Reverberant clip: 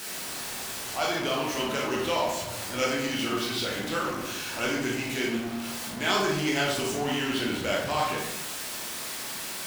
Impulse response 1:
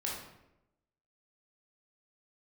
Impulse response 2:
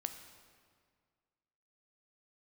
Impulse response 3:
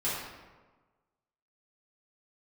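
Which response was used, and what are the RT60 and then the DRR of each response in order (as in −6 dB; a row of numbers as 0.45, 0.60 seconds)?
1; 0.90, 1.9, 1.3 seconds; −4.0, 7.0, −11.0 decibels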